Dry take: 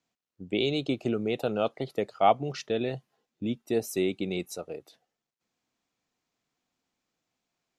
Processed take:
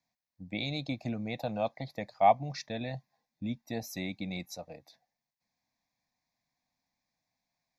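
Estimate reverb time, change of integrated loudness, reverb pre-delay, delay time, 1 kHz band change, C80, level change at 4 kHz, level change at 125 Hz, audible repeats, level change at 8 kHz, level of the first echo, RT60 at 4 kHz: no reverb audible, −4.0 dB, no reverb audible, no echo audible, −0.5 dB, no reverb audible, −5.0 dB, −1.5 dB, no echo audible, −5.0 dB, no echo audible, no reverb audible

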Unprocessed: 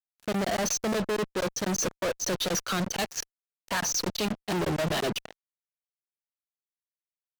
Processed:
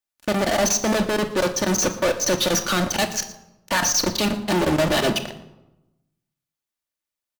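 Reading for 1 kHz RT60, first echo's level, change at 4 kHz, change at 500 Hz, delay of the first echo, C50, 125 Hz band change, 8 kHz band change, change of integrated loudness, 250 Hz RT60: 0.90 s, −18.5 dB, +8.0 dB, +8.0 dB, 116 ms, 12.0 dB, +6.0 dB, +8.0 dB, +8.0 dB, 1.1 s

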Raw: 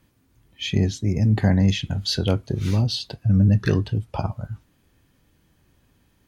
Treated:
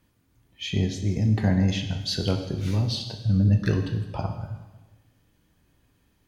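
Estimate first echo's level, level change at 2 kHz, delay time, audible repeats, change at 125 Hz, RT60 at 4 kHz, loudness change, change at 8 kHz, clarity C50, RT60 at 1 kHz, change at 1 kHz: no echo audible, −3.5 dB, no echo audible, no echo audible, −3.5 dB, 1.2 s, −3.5 dB, −3.5 dB, 7.5 dB, 1.2 s, −3.5 dB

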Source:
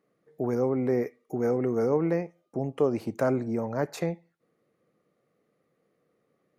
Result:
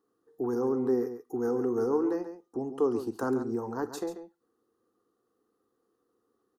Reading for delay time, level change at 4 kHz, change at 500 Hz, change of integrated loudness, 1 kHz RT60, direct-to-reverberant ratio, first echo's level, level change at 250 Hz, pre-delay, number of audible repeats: 46 ms, −3.0 dB, −2.5 dB, −2.5 dB, no reverb audible, no reverb audible, −17.0 dB, −1.5 dB, no reverb audible, 2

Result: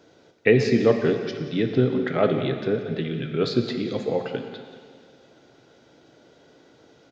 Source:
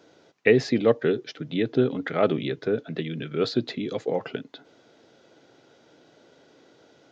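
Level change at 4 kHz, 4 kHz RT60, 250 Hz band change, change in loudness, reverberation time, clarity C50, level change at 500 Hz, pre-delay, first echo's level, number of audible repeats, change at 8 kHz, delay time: +1.0 dB, 2.1 s, +2.5 dB, +2.0 dB, 2.0 s, 6.5 dB, +1.5 dB, 10 ms, −15.0 dB, 1, can't be measured, 181 ms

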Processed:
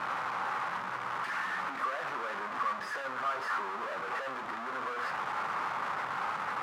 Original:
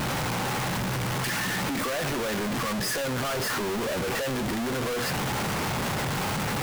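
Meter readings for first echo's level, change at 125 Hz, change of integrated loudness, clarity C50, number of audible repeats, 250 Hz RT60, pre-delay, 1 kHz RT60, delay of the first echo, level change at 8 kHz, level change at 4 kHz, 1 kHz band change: no echo audible, −25.5 dB, −6.5 dB, 15.0 dB, no echo audible, 0.50 s, 11 ms, 0.45 s, no echo audible, −22.5 dB, −15.0 dB, −1.0 dB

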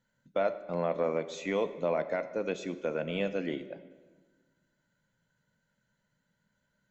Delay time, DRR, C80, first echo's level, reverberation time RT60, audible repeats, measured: no echo audible, 11.0 dB, 14.5 dB, no echo audible, 1.4 s, no echo audible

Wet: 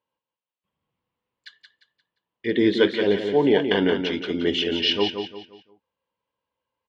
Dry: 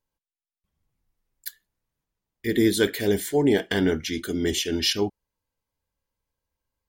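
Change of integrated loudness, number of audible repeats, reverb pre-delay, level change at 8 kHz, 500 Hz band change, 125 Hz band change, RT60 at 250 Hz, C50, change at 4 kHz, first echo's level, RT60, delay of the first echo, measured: +2.0 dB, 4, no reverb audible, below −15 dB, +3.5 dB, −3.0 dB, no reverb audible, no reverb audible, +3.5 dB, −7.0 dB, no reverb audible, 175 ms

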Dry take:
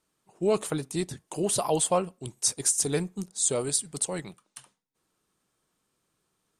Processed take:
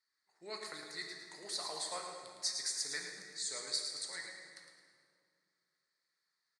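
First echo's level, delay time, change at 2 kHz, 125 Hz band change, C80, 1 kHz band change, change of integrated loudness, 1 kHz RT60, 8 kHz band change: −7.5 dB, 109 ms, −1.5 dB, −31.0 dB, 3.0 dB, −14.5 dB, −12.0 dB, 2.1 s, −14.0 dB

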